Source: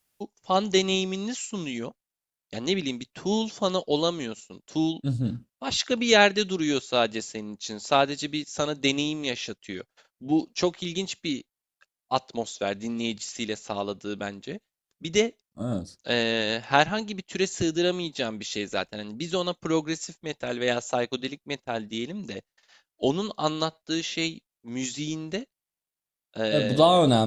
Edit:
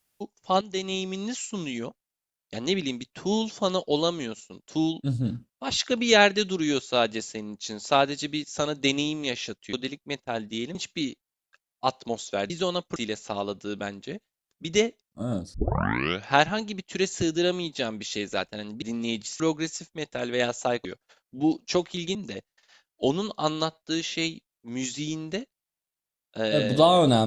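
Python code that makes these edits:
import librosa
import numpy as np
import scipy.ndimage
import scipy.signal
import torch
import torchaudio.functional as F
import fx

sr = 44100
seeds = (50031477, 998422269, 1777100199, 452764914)

y = fx.edit(x, sr, fx.fade_in_from(start_s=0.61, length_s=0.71, floor_db=-14.5),
    fx.swap(start_s=9.73, length_s=1.3, other_s=21.13, other_length_s=1.02),
    fx.swap(start_s=12.78, length_s=0.58, other_s=19.22, other_length_s=0.46),
    fx.tape_start(start_s=15.94, length_s=0.75), tone=tone)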